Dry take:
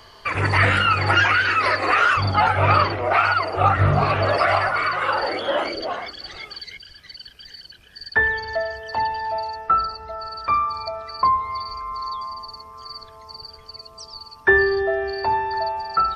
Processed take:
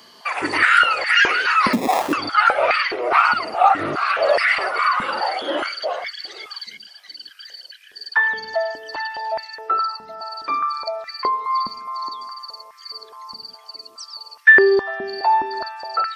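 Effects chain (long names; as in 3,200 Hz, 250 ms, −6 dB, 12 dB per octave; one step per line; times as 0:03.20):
high-shelf EQ 3,000 Hz +10.5 dB
0:01.73–0:02.13: sample-rate reduction 1,500 Hz, jitter 0%
high-pass on a step sequencer 4.8 Hz 220–1,900 Hz
level −5 dB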